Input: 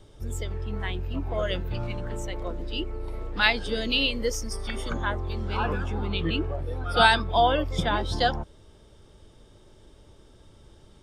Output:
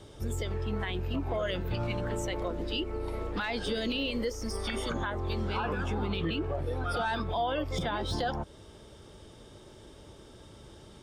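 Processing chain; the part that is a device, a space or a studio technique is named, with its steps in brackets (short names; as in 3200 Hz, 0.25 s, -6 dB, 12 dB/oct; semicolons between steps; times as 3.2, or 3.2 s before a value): podcast mastering chain (HPF 95 Hz 6 dB/oct; de-esser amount 95%; compressor 2:1, threshold -35 dBFS, peak gain reduction 9.5 dB; limiter -27.5 dBFS, peak gain reduction 6.5 dB; gain +5.5 dB; MP3 112 kbps 44100 Hz)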